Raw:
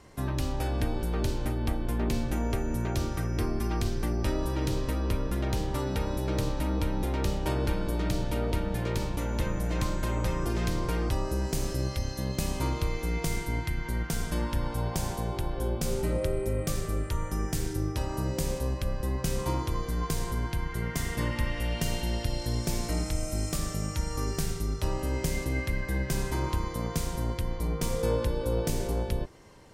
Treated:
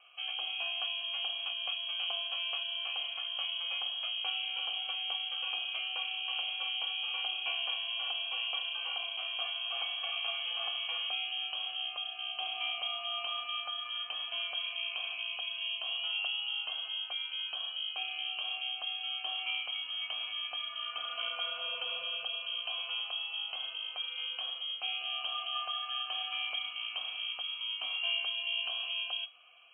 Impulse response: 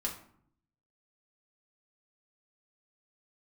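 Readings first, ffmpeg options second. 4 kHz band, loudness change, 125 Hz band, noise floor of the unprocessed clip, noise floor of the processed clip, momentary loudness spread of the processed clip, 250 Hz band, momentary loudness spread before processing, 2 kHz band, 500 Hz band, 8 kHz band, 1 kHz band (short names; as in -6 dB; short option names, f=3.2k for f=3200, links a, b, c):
+12.0 dB, -3.0 dB, under -40 dB, -37 dBFS, -43 dBFS, 3 LU, under -40 dB, 3 LU, +2.5 dB, -20.0 dB, under -40 dB, -7.0 dB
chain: -filter_complex "[0:a]lowpass=f=2.8k:t=q:w=0.5098,lowpass=f=2.8k:t=q:w=0.6013,lowpass=f=2.8k:t=q:w=0.9,lowpass=f=2.8k:t=q:w=2.563,afreqshift=-3300,asplit=3[a][b][c];[a]bandpass=f=730:t=q:w=8,volume=0dB[d];[b]bandpass=f=1.09k:t=q:w=8,volume=-6dB[e];[c]bandpass=f=2.44k:t=q:w=8,volume=-9dB[f];[d][e][f]amix=inputs=3:normalize=0,volume=8.5dB"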